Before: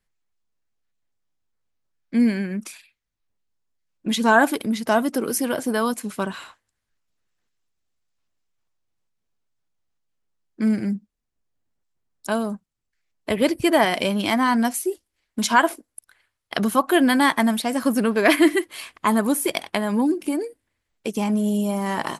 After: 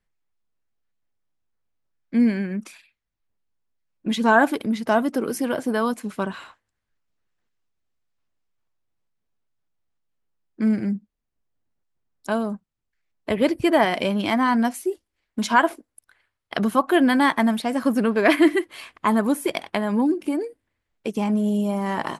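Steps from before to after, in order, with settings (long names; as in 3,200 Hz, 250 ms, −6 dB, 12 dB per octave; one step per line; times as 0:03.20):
high-shelf EQ 4,600 Hz −10.5 dB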